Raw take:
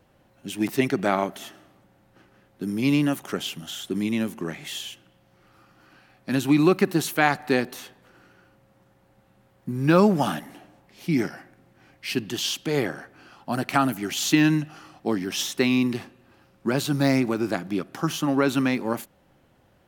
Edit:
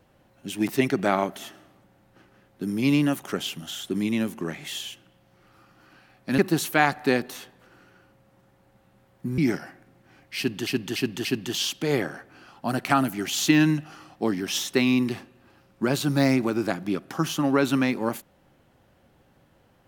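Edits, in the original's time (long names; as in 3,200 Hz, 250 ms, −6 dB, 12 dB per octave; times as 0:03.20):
0:06.38–0:06.81: remove
0:09.81–0:11.09: remove
0:12.09–0:12.38: repeat, 4 plays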